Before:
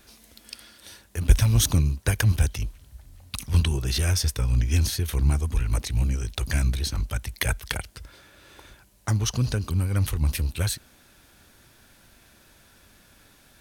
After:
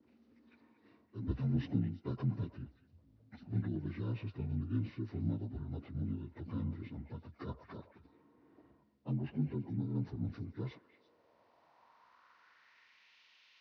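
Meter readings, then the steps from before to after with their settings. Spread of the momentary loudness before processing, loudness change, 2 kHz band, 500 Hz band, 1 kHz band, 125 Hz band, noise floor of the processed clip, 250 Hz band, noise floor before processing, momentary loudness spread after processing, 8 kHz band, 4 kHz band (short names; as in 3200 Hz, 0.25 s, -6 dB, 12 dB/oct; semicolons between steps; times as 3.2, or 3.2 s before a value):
14 LU, -14.5 dB, -24.0 dB, -11.0 dB, -16.0 dB, -14.5 dB, -70 dBFS, -5.0 dB, -57 dBFS, 12 LU, under -40 dB, under -25 dB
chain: inharmonic rescaling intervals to 76%; gate with hold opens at -51 dBFS; band-pass sweep 270 Hz -> 2800 Hz, 10.5–13.21; on a send: delay with a stepping band-pass 0.113 s, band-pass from 730 Hz, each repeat 1.4 oct, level -7.5 dB; on the sum: gain -1.5 dB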